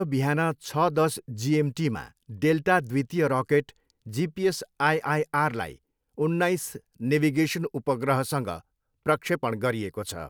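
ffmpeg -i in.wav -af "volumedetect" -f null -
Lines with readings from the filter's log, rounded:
mean_volume: -26.4 dB
max_volume: -7.9 dB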